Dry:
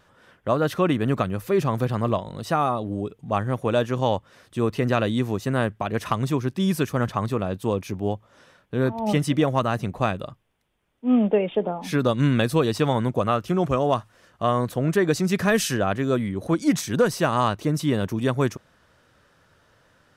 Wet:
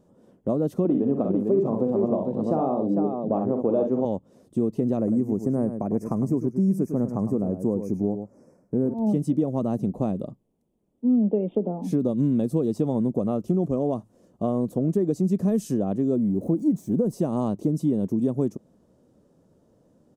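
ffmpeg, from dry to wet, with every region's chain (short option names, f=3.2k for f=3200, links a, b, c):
-filter_complex "[0:a]asettb=1/sr,asplit=3[a][b][c];[a]atrim=end=0.854[d];[b]atrim=start=0.85:end=4.05,asetpts=PTS-STARTPTS,afade=t=in:d=0.004:c=qsin,afade=t=out:st=3.196:d=0.004:c=qsin,acontrast=66,bandpass=f=680:t=q:w=0.65,aecho=1:1:44|64|450:0.422|0.398|0.473,atrim=end_sample=141120[e];[c]atrim=start=4.046[f];[d][e]acrossfade=d=0.004:c1=hsin:c2=qsin[g];[g][f]acrossfade=d=0.004:c1=qsin:c2=hsin,asettb=1/sr,asplit=3[h][i][j];[h]atrim=end=4.974[k];[i]atrim=start=4.97:end=8.94,asetpts=PTS-STARTPTS,afade=t=in:d=0.004:c=qsin,afade=t=out:st=3.966:d=0.004:c=qsin,asuperstop=centerf=3400:order=8:qfactor=1.4,aecho=1:1:104:0.299,atrim=end_sample=175077[l];[j]atrim=start=8.936[m];[k][l]acrossfade=d=0.004:c1=hsin:c2=qsin[n];[n][m]acrossfade=d=0.004:c1=qsin:c2=hsin,asettb=1/sr,asplit=3[o][p][q];[o]atrim=end=16.164[r];[p]atrim=start=16.16:end=17.13,asetpts=PTS-STARTPTS,afade=t=in:d=0.004:c=qsin,afade=t=out:st=0.966:d=0.004:c=qsin,aeval=exprs='val(0)+0.5*0.015*sgn(val(0))':c=same,equalizer=f=4k:t=o:w=2.8:g=-11[s];[q]atrim=start=17.126[t];[r][s]acrossfade=d=0.004:c1=hsin:c2=qsin[u];[u][t]acrossfade=d=0.004:c1=qsin:c2=hsin,firequalizer=gain_entry='entry(100,0);entry(200,13);entry(1500,-18);entry(7000,7)':delay=0.05:min_phase=1,acompressor=threshold=-17dB:ratio=3,highshelf=f=3.8k:g=-12,volume=-4dB"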